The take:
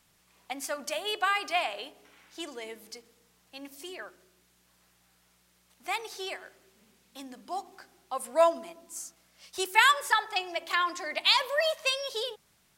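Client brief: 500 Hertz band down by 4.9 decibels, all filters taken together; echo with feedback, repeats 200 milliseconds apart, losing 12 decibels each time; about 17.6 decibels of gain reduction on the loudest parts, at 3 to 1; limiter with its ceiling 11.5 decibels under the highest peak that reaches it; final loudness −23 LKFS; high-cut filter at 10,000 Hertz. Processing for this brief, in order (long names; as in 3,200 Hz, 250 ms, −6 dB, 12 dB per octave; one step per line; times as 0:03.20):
low-pass filter 10,000 Hz
parametric band 500 Hz −7.5 dB
downward compressor 3 to 1, threshold −44 dBFS
brickwall limiter −37 dBFS
repeating echo 200 ms, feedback 25%, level −12 dB
level +25 dB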